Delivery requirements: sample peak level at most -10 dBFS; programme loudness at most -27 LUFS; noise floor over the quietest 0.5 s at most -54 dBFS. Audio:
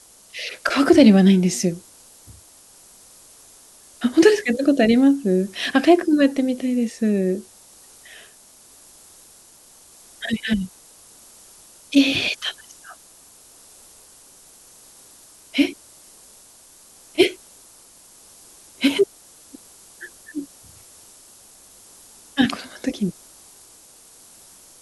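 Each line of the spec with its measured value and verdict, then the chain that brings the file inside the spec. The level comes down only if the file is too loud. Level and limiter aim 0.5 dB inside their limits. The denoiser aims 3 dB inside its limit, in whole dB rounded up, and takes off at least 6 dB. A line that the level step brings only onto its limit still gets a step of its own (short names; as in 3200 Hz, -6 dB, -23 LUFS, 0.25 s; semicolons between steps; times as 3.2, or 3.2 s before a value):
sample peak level -2.0 dBFS: fail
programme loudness -19.5 LUFS: fail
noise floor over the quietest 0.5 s -49 dBFS: fail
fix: gain -8 dB; limiter -10.5 dBFS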